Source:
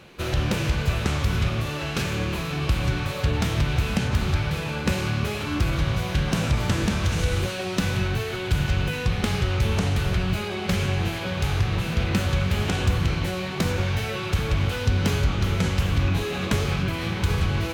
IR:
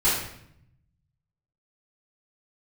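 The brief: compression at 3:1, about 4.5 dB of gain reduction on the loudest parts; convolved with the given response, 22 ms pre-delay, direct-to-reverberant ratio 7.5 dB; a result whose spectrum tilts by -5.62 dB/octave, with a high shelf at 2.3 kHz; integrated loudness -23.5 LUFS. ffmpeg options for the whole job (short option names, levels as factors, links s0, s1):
-filter_complex "[0:a]highshelf=f=2300:g=-3,acompressor=threshold=0.0708:ratio=3,asplit=2[s0][s1];[1:a]atrim=start_sample=2205,adelay=22[s2];[s1][s2]afir=irnorm=-1:irlink=0,volume=0.0794[s3];[s0][s3]amix=inputs=2:normalize=0,volume=1.41"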